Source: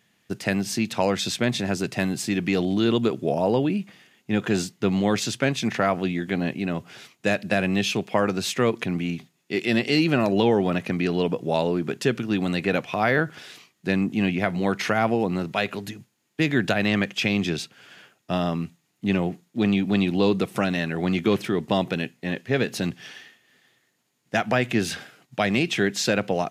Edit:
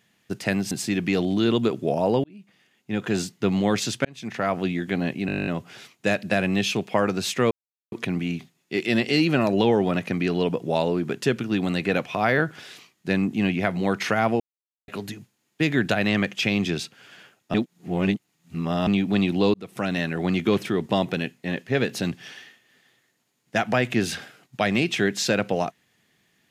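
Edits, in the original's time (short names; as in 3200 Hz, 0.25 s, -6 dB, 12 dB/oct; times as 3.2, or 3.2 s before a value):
0.71–2.11 cut
3.64–4.7 fade in
5.45–6.01 fade in
6.67 stutter 0.02 s, 11 plays
8.71 insert silence 0.41 s
15.19–15.67 mute
18.33–19.66 reverse
20.33–20.76 fade in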